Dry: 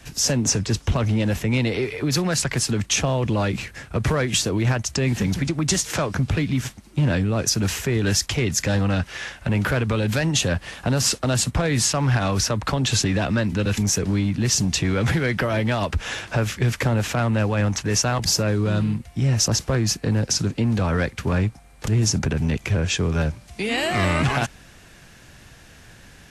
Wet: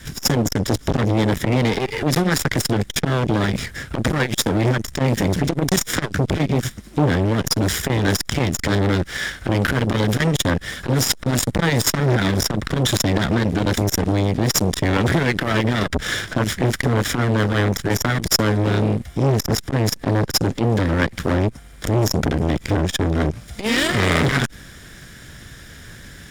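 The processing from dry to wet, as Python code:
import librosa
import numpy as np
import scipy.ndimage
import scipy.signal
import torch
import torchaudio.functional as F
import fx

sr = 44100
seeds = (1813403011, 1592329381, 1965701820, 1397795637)

y = fx.lower_of_two(x, sr, delay_ms=0.56)
y = fx.transformer_sat(y, sr, knee_hz=700.0)
y = y * 10.0 ** (8.0 / 20.0)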